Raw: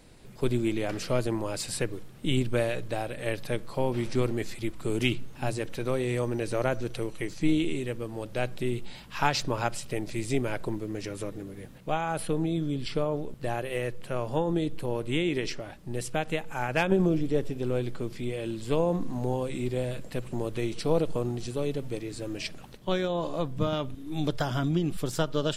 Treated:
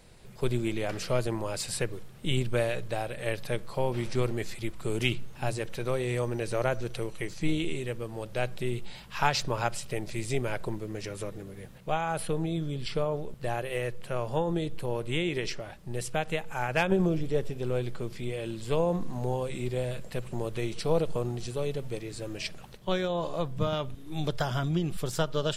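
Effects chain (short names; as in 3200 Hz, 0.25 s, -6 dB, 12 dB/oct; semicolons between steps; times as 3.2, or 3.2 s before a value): bell 280 Hz -9 dB 0.43 oct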